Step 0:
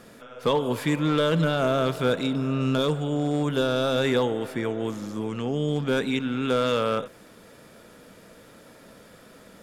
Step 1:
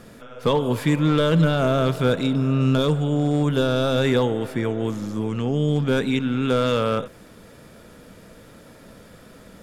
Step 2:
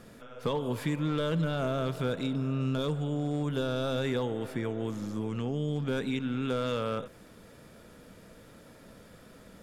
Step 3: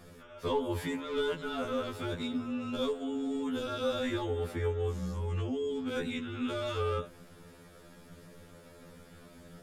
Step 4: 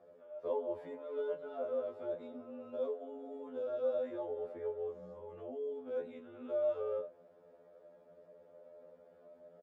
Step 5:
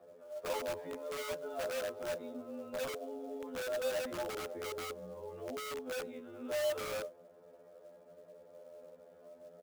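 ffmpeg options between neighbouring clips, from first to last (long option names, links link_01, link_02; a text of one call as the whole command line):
ffmpeg -i in.wav -af "lowshelf=frequency=150:gain=10.5,volume=1.5dB" out.wav
ffmpeg -i in.wav -af "acompressor=threshold=-23dB:ratio=2,volume=-6.5dB" out.wav
ffmpeg -i in.wav -af "afreqshift=-22,afftfilt=real='re*2*eq(mod(b,4),0)':imag='im*2*eq(mod(b,4),0)':win_size=2048:overlap=0.75,volume=1.5dB" out.wav
ffmpeg -i in.wav -filter_complex "[0:a]bandpass=frequency=580:width_type=q:width=5.9:csg=0,asplit=2[link_01][link_02];[link_02]adelay=28,volume=-11.5dB[link_03];[link_01][link_03]amix=inputs=2:normalize=0,volume=4.5dB" out.wav
ffmpeg -i in.wav -filter_complex "[0:a]acrossover=split=210|510[link_01][link_02][link_03];[link_02]aeval=exprs='(mod(126*val(0)+1,2)-1)/126':channel_layout=same[link_04];[link_03]acrusher=bits=4:mode=log:mix=0:aa=0.000001[link_05];[link_01][link_04][link_05]amix=inputs=3:normalize=0,volume=3dB" out.wav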